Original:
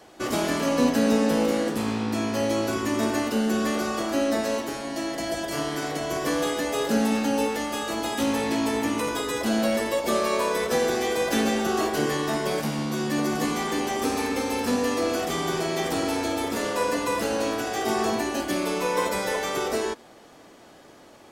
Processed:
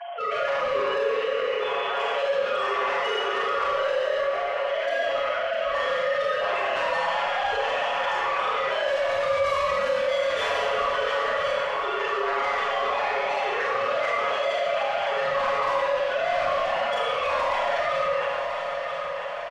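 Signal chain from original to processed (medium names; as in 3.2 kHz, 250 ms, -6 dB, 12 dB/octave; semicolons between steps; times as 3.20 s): formants replaced by sine waves; high-pass 570 Hz 24 dB/octave; comb 7.2 ms, depth 90%; in parallel at -12 dB: hard clipper -24.5 dBFS, distortion -8 dB; on the sum: granular stretch 0.61×, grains 31 ms; saturation -24.5 dBFS, distortion -10 dB; dynamic bell 1 kHz, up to +4 dB, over -43 dBFS, Q 3.9; time stretch by phase-locked vocoder 1.5×; on a send: multi-head delay 329 ms, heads second and third, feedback 44%, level -13 dB; on the sum: Schroeder reverb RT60 1.3 s, combs from 27 ms, DRR -5.5 dB; level flattener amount 50%; trim -6.5 dB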